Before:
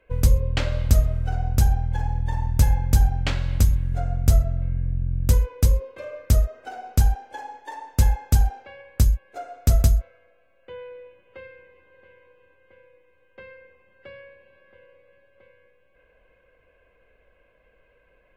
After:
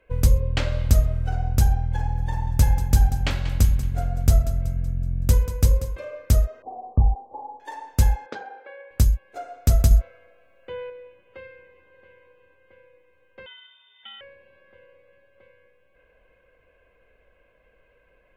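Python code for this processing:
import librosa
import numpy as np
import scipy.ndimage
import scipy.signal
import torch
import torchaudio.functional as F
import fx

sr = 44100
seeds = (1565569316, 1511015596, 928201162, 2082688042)

y = fx.echo_feedback(x, sr, ms=188, feedback_pct=49, wet_db=-13.0, at=(2.17, 5.95), fade=0.02)
y = fx.brickwall_lowpass(y, sr, high_hz=1200.0, at=(6.62, 7.6))
y = fx.cabinet(y, sr, low_hz=330.0, low_slope=24, high_hz=3400.0, hz=(500.0, 720.0, 1500.0, 2800.0), db=(6, -5, 4, -7), at=(8.26, 8.91))
y = fx.freq_invert(y, sr, carrier_hz=3600, at=(13.46, 14.21))
y = fx.edit(y, sr, fx.clip_gain(start_s=9.91, length_s=0.99, db=4.5), tone=tone)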